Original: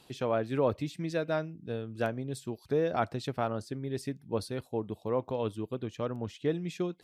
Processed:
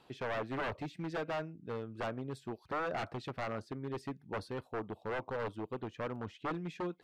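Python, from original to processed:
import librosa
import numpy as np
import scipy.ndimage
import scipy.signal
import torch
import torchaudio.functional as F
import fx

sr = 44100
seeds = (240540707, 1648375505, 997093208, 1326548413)

y = 10.0 ** (-29.0 / 20.0) * (np.abs((x / 10.0 ** (-29.0 / 20.0) + 3.0) % 4.0 - 2.0) - 1.0)
y = fx.curve_eq(y, sr, hz=(120.0, 1300.0, 9800.0), db=(0, 7, -10))
y = F.gain(torch.from_numpy(y), -6.0).numpy()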